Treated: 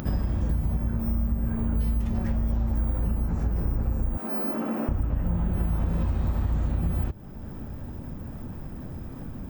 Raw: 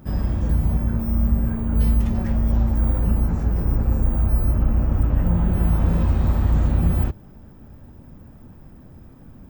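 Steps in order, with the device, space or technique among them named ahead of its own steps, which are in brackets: 4.17–4.89 s: steep high-pass 220 Hz 36 dB/octave; upward and downward compression (upward compressor, threshold -33 dBFS; compression 6:1, threshold -26 dBFS, peak gain reduction 12.5 dB); trim +3.5 dB

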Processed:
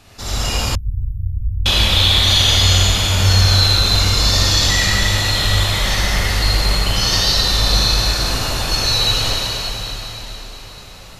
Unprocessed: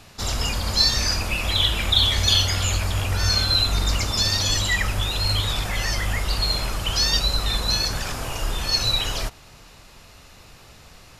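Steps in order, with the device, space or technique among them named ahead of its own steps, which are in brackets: cathedral (reverberation RT60 4.1 s, pre-delay 35 ms, DRR -8 dB); 0.75–1.66 s: inverse Chebyshev band-stop 650–7100 Hz, stop band 80 dB; trim -1.5 dB

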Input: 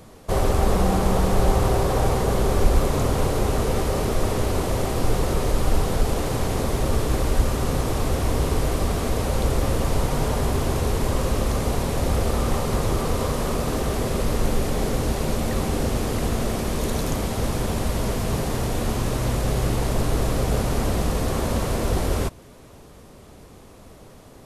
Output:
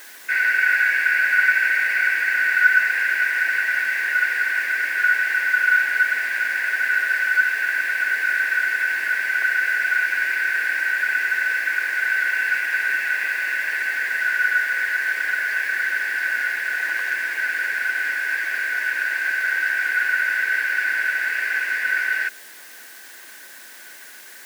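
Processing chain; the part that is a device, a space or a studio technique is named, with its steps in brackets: split-band scrambled radio (four frequency bands reordered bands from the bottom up 3142; band-pass 340–3200 Hz; white noise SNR 22 dB); high-pass 230 Hz 24 dB/octave

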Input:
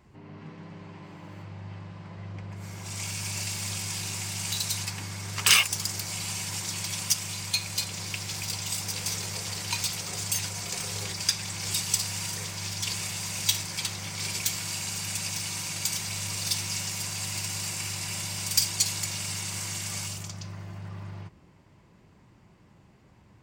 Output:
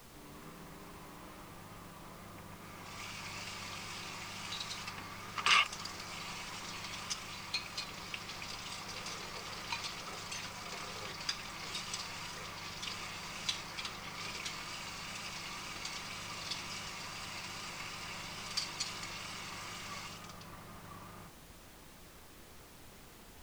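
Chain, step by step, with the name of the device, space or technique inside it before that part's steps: horn gramophone (band-pass 210–3800 Hz; peaking EQ 1.2 kHz +10 dB 0.27 oct; wow and flutter; pink noise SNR 12 dB); trim -6 dB

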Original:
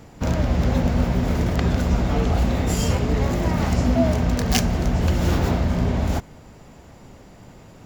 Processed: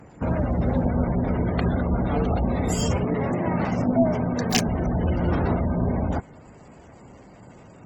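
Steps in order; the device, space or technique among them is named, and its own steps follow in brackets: 3.03–4.68 s: high-pass 100 Hz 24 dB/octave; noise-suppressed video call (high-pass 100 Hz 6 dB/octave; spectral gate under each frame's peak -25 dB strong; Opus 16 kbps 48 kHz)

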